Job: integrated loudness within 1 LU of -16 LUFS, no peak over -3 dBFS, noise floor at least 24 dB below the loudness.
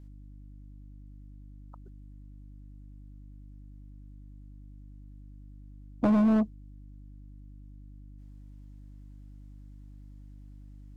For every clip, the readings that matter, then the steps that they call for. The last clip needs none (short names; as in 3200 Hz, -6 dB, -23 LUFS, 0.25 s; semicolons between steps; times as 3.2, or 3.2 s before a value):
clipped 0.5%; flat tops at -18.5 dBFS; hum 50 Hz; harmonics up to 300 Hz; hum level -46 dBFS; loudness -25.5 LUFS; peak -18.5 dBFS; loudness target -16.0 LUFS
-> clip repair -18.5 dBFS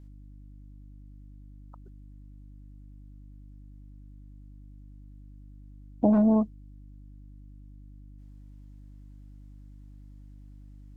clipped 0.0%; hum 50 Hz; harmonics up to 250 Hz; hum level -46 dBFS
-> de-hum 50 Hz, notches 5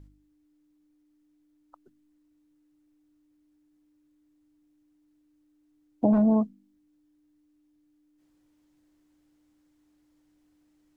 hum none; loudness -24.0 LUFS; peak -10.0 dBFS; loudness target -16.0 LUFS
-> gain +8 dB; limiter -3 dBFS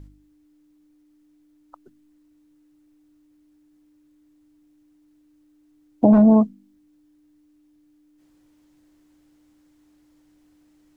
loudness -16.5 LUFS; peak -3.0 dBFS; noise floor -60 dBFS